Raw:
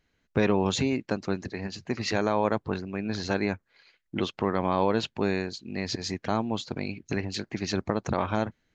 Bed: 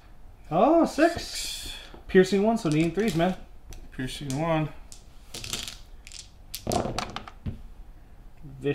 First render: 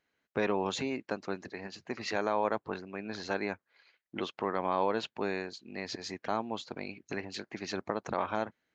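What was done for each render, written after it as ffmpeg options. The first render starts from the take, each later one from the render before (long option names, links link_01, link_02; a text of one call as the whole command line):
ffmpeg -i in.wav -af "highpass=frequency=670:poles=1,highshelf=frequency=2400:gain=-9" out.wav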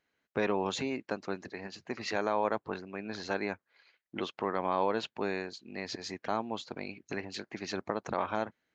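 ffmpeg -i in.wav -af anull out.wav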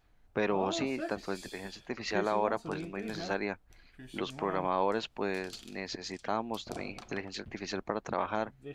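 ffmpeg -i in.wav -i bed.wav -filter_complex "[1:a]volume=-17.5dB[link_01];[0:a][link_01]amix=inputs=2:normalize=0" out.wav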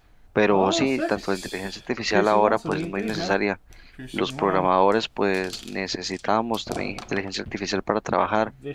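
ffmpeg -i in.wav -af "volume=11dB" out.wav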